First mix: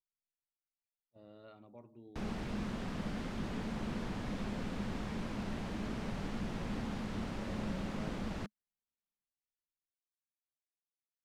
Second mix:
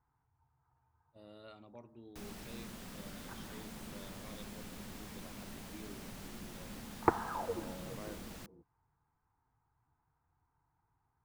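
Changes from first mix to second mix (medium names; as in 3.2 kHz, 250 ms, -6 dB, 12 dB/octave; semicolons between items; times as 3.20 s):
first sound -10.5 dB; second sound: unmuted; master: remove tape spacing loss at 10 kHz 21 dB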